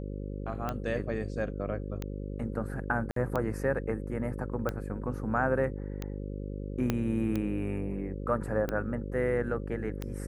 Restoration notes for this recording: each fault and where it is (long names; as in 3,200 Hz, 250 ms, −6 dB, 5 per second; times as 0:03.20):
mains buzz 50 Hz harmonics 11 −37 dBFS
scratch tick 45 rpm −19 dBFS
0:03.11–0:03.16: drop-out 53 ms
0:06.90: click −14 dBFS